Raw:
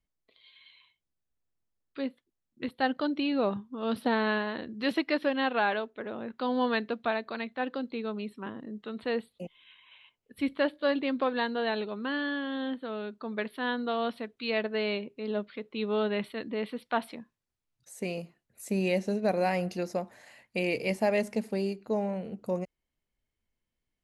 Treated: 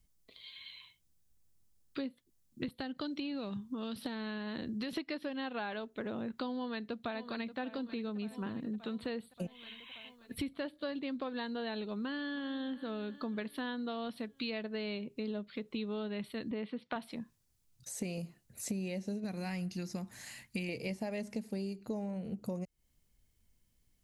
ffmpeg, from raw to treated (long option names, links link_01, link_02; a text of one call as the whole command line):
ffmpeg -i in.wav -filter_complex "[0:a]asettb=1/sr,asplit=3[link_01][link_02][link_03];[link_01]atrim=end=2.684[link_04];[link_02]atrim=start=2.68:end=4.93,asetpts=PTS-STARTPTS,afade=type=in:duration=0.004:curve=qsin,afade=type=out:start_time=2.246:duration=0.004:curve=qsin,acrossover=split=400|1700[link_05][link_06][link_07];[link_05]acompressor=threshold=-41dB:ratio=4[link_08];[link_06]acompressor=threshold=-43dB:ratio=4[link_09];[link_07]acompressor=threshold=-45dB:ratio=4[link_10];[link_08][link_09][link_10]amix=inputs=3:normalize=0[link_11];[link_03]atrim=start=4.926[link_12];[link_04][link_11]acrossfade=duration=0.004:curve1=hsin:curve2=qsin[link_13];[link_13][link_12]acrossfade=duration=0.004:curve1=qsin:curve2=hsin,asplit=2[link_14][link_15];[link_15]afade=type=in:start_time=6.56:duration=0.01,afade=type=out:start_time=7.59:duration=0.01,aecho=0:1:580|1160|1740|2320|2900|3480:0.133352|0.0800113|0.0480068|0.0288041|0.0172824|0.0103695[link_16];[link_14][link_16]amix=inputs=2:normalize=0,asplit=2[link_17][link_18];[link_18]afade=type=in:start_time=12.02:duration=0.01,afade=type=out:start_time=12.51:duration=0.01,aecho=0:1:320|640|960|1280|1600|1920:0.133352|0.0800113|0.0480068|0.0288041|0.0172824|0.0103695[link_19];[link_17][link_19]amix=inputs=2:normalize=0,asettb=1/sr,asplit=3[link_20][link_21][link_22];[link_20]atrim=end=16.514[link_23];[link_21]atrim=start=16.51:end=16.96,asetpts=PTS-STARTPTS,afade=type=in:duration=0.004:curve=qsin,afade=type=out:start_time=0.446:duration=0.004:curve=qsin,highpass=140,lowpass=3100[link_24];[link_22]atrim=start=16.956[link_25];[link_23][link_24]acrossfade=duration=0.004:curve1=hsin:curve2=qsin[link_26];[link_26][link_25]acrossfade=duration=0.004:curve1=qsin:curve2=hsin,asettb=1/sr,asplit=3[link_27][link_28][link_29];[link_27]atrim=end=19.244[link_30];[link_28]atrim=start=19.24:end=20.69,asetpts=PTS-STARTPTS,afade=type=in:duration=0.004:curve=qsin,afade=type=out:start_time=1.446:duration=0.004:curve=qsin,equalizer=frequency=570:width=1.2:gain=-11[link_31];[link_29]atrim=start=20.686[link_32];[link_30][link_31]acrossfade=duration=0.004:curve1=hsin:curve2=qsin[link_33];[link_33][link_32]acrossfade=duration=0.004:curve1=qsin:curve2=hsin,acrossover=split=5700[link_34][link_35];[link_35]acompressor=threshold=-60dB:ratio=4:attack=1:release=60[link_36];[link_34][link_36]amix=inputs=2:normalize=0,bass=frequency=250:gain=10,treble=frequency=4000:gain=11,acompressor=threshold=-39dB:ratio=10,volume=3.5dB" out.wav